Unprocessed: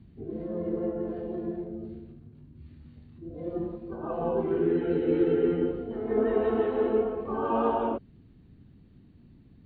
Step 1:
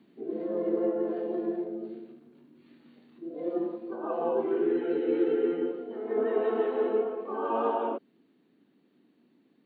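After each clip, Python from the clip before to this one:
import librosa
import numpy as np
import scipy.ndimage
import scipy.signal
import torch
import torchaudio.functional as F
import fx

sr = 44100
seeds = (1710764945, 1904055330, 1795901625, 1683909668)

y = scipy.signal.sosfilt(scipy.signal.butter(4, 270.0, 'highpass', fs=sr, output='sos'), x)
y = fx.rider(y, sr, range_db=4, speed_s=2.0)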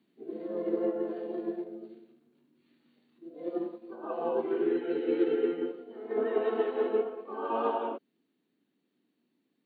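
y = fx.high_shelf(x, sr, hz=2600.0, db=8.5)
y = fx.upward_expand(y, sr, threshold_db=-45.0, expansion=1.5)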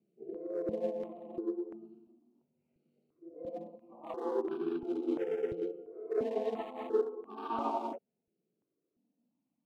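y = fx.wiener(x, sr, points=25)
y = fx.phaser_held(y, sr, hz=2.9, low_hz=270.0, high_hz=2000.0)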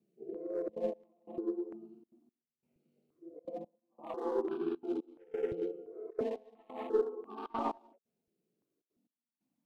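y = fx.tracing_dist(x, sr, depth_ms=0.034)
y = fx.step_gate(y, sr, bpm=177, pattern='xxxxxxxx.xx....x', floor_db=-24.0, edge_ms=4.5)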